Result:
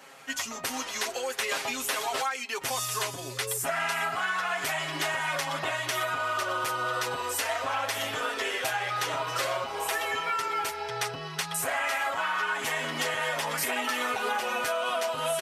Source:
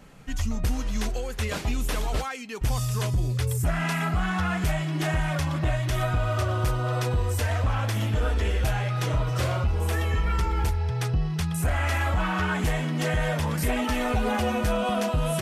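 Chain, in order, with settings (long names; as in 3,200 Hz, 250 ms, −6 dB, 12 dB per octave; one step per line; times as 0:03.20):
high-pass filter 610 Hz 12 dB per octave
comb filter 7.4 ms, depth 78%
downward compressor, threshold −31 dBFS, peak gain reduction 9 dB
level +5 dB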